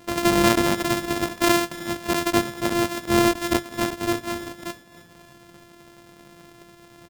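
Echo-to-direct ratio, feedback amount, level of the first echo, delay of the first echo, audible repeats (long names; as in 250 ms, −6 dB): −17.5 dB, 49%, −18.5 dB, 310 ms, 3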